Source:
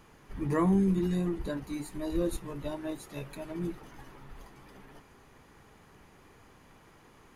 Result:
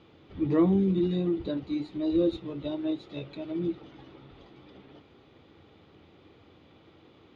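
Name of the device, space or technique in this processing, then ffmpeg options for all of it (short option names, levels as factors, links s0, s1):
guitar cabinet: -af "highpass=83,equalizer=f=88:t=q:w=4:g=8,equalizer=f=320:t=q:w=4:g=8,equalizer=f=520:t=q:w=4:g=4,equalizer=f=990:t=q:w=4:g=-7,equalizer=f=1700:t=q:w=4:g=-9,equalizer=f=3600:t=q:w=4:g=9,lowpass=f=4200:w=0.5412,lowpass=f=4200:w=1.3066"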